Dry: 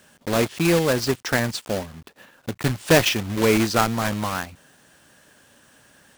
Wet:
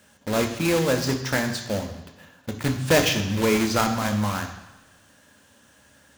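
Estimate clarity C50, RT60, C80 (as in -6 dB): 9.0 dB, 1.0 s, 11.0 dB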